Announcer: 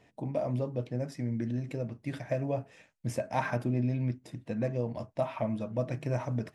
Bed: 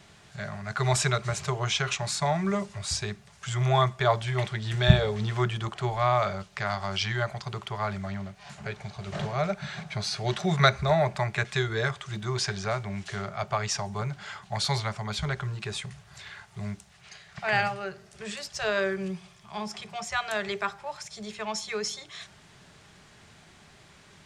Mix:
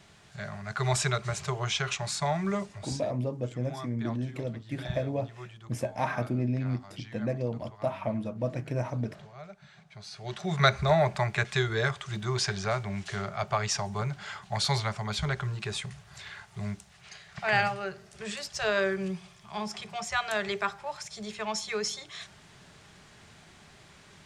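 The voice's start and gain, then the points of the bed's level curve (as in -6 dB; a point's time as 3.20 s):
2.65 s, +0.5 dB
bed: 2.64 s -2.5 dB
3.22 s -18 dB
9.85 s -18 dB
10.75 s 0 dB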